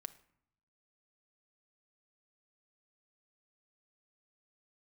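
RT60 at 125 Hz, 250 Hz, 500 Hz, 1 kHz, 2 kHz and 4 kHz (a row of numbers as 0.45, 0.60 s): 1.1, 0.95, 0.65, 0.75, 0.60, 0.45 s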